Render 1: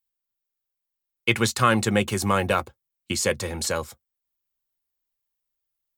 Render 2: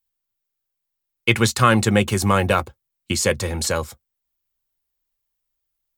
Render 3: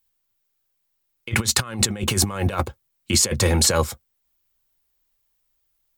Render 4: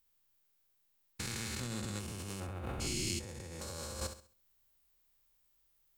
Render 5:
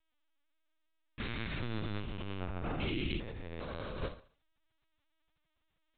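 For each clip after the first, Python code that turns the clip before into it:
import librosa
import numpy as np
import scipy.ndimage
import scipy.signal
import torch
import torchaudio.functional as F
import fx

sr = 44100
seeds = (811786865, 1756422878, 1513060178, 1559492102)

y1 = fx.low_shelf(x, sr, hz=87.0, db=8.5)
y1 = y1 * librosa.db_to_amplitude(3.5)
y2 = fx.over_compress(y1, sr, threshold_db=-23.0, ratio=-0.5)
y2 = y2 * librosa.db_to_amplitude(2.5)
y3 = fx.spec_steps(y2, sr, hold_ms=400)
y3 = fx.room_flutter(y3, sr, wall_m=11.4, rt60_s=0.41)
y3 = fx.over_compress(y3, sr, threshold_db=-34.0, ratio=-1.0)
y3 = y3 * librosa.db_to_amplitude(-7.0)
y4 = fx.lpc_vocoder(y3, sr, seeds[0], excitation='pitch_kept', order=16)
y4 = y4 * librosa.db_to_amplitude(3.5)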